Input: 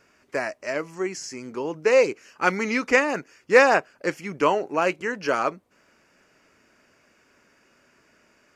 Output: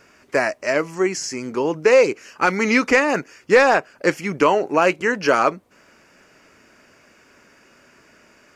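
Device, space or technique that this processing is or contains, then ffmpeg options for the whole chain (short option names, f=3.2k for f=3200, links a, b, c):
soft clipper into limiter: -af "asoftclip=type=tanh:threshold=-5dB,alimiter=limit=-12.5dB:level=0:latency=1:release=226,volume=8dB"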